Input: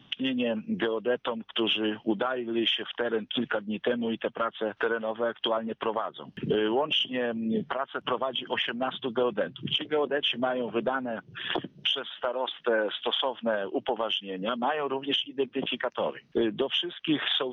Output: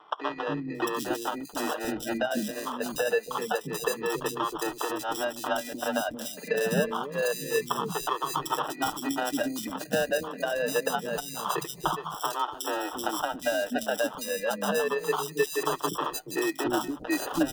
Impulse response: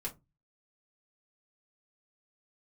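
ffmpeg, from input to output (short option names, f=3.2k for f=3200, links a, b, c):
-filter_complex "[0:a]afftfilt=real='re*pow(10,19/40*sin(2*PI*(0.63*log(max(b,1)*sr/1024/100)/log(2)-(-0.26)*(pts-256)/sr)))':imag='im*pow(10,19/40*sin(2*PI*(0.63*log(max(b,1)*sr/1024/100)/log(2)-(-0.26)*(pts-256)/sr)))':win_size=1024:overlap=0.75,equalizer=f=2.1k:w=2.6:g=-9.5,aecho=1:1:6.8:0.44,adynamicequalizer=threshold=0.00251:dfrequency=110:dqfactor=2.6:tfrequency=110:tqfactor=2.6:attack=5:release=100:ratio=0.375:range=3:mode=cutabove:tftype=bell,acrossover=split=340[a][b];[b]acompressor=threshold=-24dB:ratio=10[c];[a][c]amix=inputs=2:normalize=0,afreqshift=16,acrusher=samples=20:mix=1:aa=0.000001,acrossover=split=340|3500[d][e][f];[d]adelay=280[g];[f]adelay=750[h];[g][e][h]amix=inputs=3:normalize=0"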